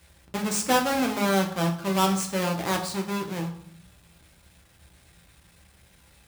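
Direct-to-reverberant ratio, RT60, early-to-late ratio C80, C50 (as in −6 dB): 2.0 dB, 0.65 s, 14.0 dB, 10.0 dB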